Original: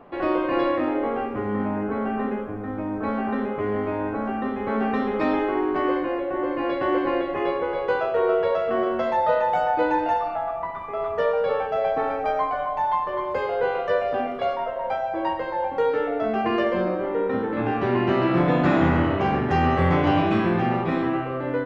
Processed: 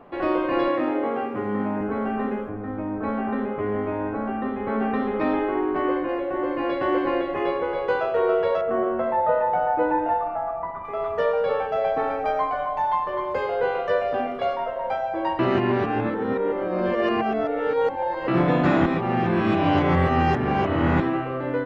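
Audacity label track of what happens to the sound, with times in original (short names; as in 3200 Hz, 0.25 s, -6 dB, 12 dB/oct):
0.680000	1.810000	HPF 110 Hz 24 dB/oct
2.490000	6.090000	air absorption 190 m
8.610000	10.850000	LPF 1600 Hz
15.390000	18.280000	reverse
18.860000	21.000000	reverse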